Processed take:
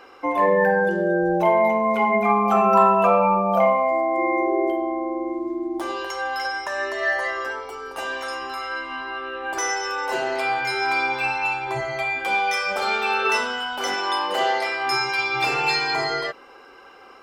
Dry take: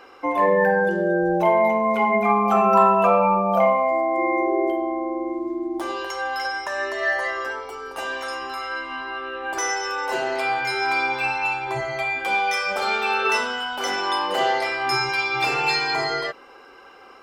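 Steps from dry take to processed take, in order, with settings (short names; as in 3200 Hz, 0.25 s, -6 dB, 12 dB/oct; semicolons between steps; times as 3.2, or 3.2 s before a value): 13.94–15.19 HPF 250 Hz 6 dB/oct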